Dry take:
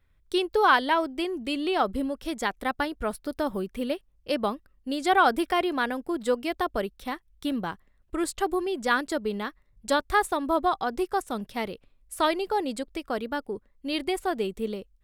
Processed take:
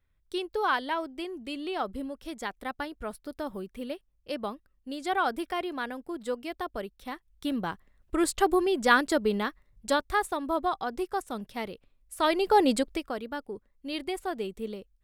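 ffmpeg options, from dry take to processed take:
ffmpeg -i in.wav -af "volume=14.5dB,afade=type=in:start_time=6.96:duration=1.4:silence=0.316228,afade=type=out:start_time=9.32:duration=0.82:silence=0.446684,afade=type=in:start_time=12.19:duration=0.5:silence=0.266073,afade=type=out:start_time=12.69:duration=0.45:silence=0.237137" out.wav

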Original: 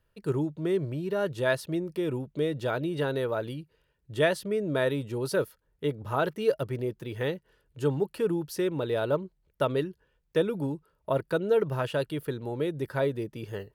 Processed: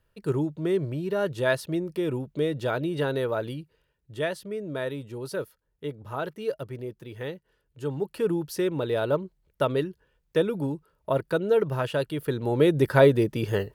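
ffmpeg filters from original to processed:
ffmpeg -i in.wav -af "volume=17dB,afade=type=out:start_time=3.54:duration=0.65:silence=0.473151,afade=type=in:start_time=7.86:duration=0.41:silence=0.473151,afade=type=in:start_time=12.18:duration=0.54:silence=0.375837" out.wav

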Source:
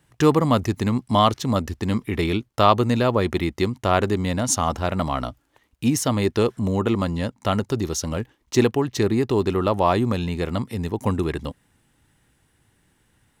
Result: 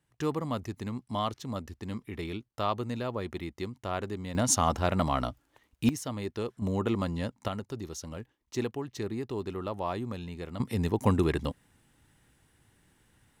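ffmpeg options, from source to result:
ffmpeg -i in.wav -af "asetnsamples=nb_out_samples=441:pad=0,asendcmd='4.35 volume volume -3.5dB;5.89 volume volume -14dB;6.62 volume volume -7.5dB;7.48 volume volume -14dB;10.6 volume volume -2dB',volume=-14dB" out.wav

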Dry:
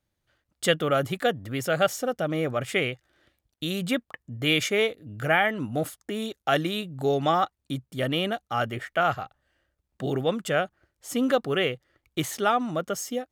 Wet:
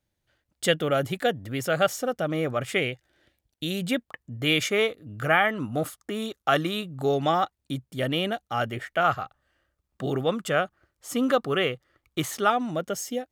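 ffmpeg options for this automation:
ffmpeg -i in.wav -af "asetnsamples=nb_out_samples=441:pad=0,asendcmd='1.6 equalizer g 1.5;2.78 equalizer g -7.5;4.05 equalizer g 0.5;4.7 equalizer g 7.5;7.16 equalizer g -2;9.04 equalizer g 6;12.5 equalizer g -6',equalizer=frequency=1200:width_type=o:width=0.31:gain=-5" out.wav

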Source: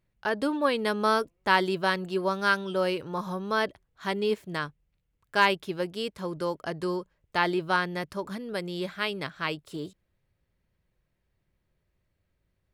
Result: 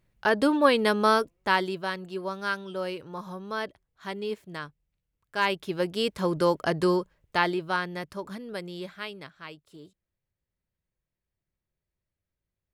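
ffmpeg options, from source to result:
ffmpeg -i in.wav -af "volume=17.5dB,afade=type=out:start_time=0.72:duration=1.11:silence=0.298538,afade=type=in:start_time=5.37:duration=0.87:silence=0.237137,afade=type=out:start_time=6.83:duration=0.78:silence=0.334965,afade=type=out:start_time=8.46:duration=0.95:silence=0.334965" out.wav

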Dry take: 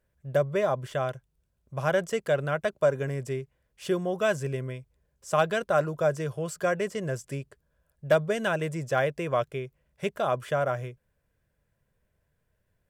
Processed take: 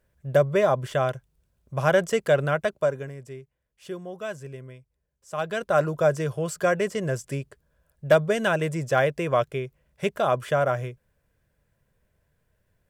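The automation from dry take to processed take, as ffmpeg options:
ffmpeg -i in.wav -af "volume=17dB,afade=type=out:start_time=2.44:duration=0.7:silence=0.223872,afade=type=in:start_time=5.34:duration=0.52:silence=0.251189" out.wav

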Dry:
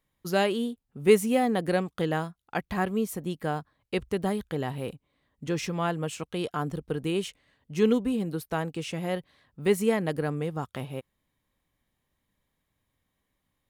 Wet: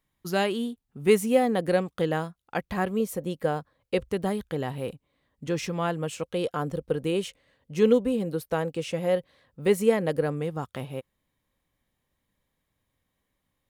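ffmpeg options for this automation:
ffmpeg -i in.wav -af "asetnsamples=nb_out_samples=441:pad=0,asendcmd='1.21 equalizer g 5.5;3 equalizer g 13;4.09 equalizer g 4;6.14 equalizer g 11.5;10.32 equalizer g 3',equalizer=frequency=520:width_type=o:width=0.26:gain=-6" out.wav

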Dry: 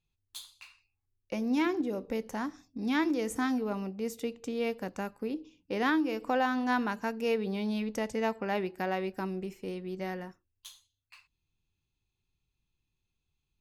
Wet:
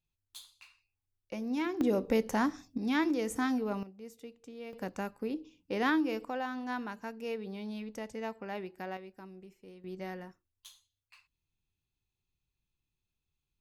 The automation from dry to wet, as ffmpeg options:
ffmpeg -i in.wav -af "asetnsamples=nb_out_samples=441:pad=0,asendcmd='1.81 volume volume 5.5dB;2.78 volume volume -1dB;3.83 volume volume -13dB;4.73 volume volume -1dB;6.25 volume volume -8dB;8.97 volume volume -14.5dB;9.84 volume volume -4.5dB',volume=-5dB" out.wav

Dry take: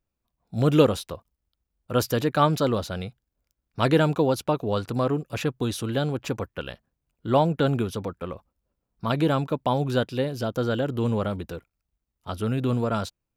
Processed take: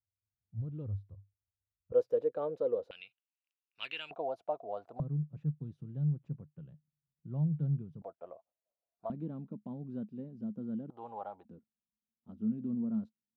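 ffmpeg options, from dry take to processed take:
ffmpeg -i in.wav -af "asetnsamples=nb_out_samples=441:pad=0,asendcmd='1.92 bandpass f 490;2.91 bandpass f 2700;4.11 bandpass f 680;5 bandpass f 150;8.02 bandpass f 660;9.1 bandpass f 210;10.9 bandpass f 800;11.45 bandpass f 220',bandpass=frequency=100:width_type=q:width=9.4:csg=0" out.wav

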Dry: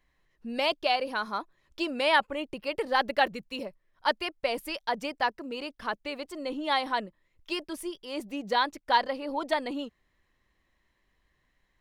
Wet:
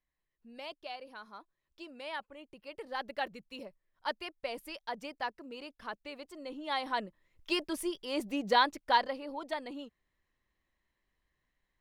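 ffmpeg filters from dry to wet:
ffmpeg -i in.wav -af "volume=1dB,afade=type=in:start_time=2.4:duration=1.24:silence=0.398107,afade=type=in:start_time=6.65:duration=0.87:silence=0.316228,afade=type=out:start_time=8.49:duration=0.87:silence=0.316228" out.wav

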